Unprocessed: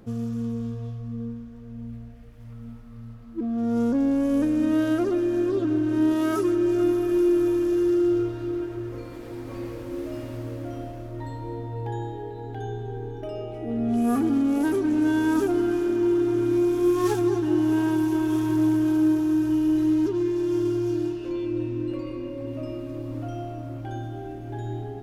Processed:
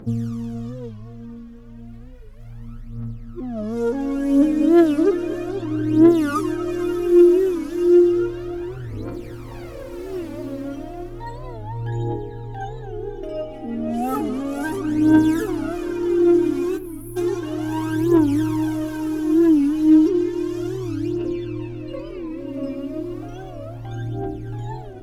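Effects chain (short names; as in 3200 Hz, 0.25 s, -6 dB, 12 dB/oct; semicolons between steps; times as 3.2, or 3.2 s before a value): spectral delete 16.78–17.17, 210–9800 Hz; phaser 0.33 Hz, delay 3.8 ms, feedback 72%; on a send: darkening echo 0.237 s, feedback 61%, low-pass 3000 Hz, level -15 dB; on the sum: record warp 45 rpm, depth 160 cents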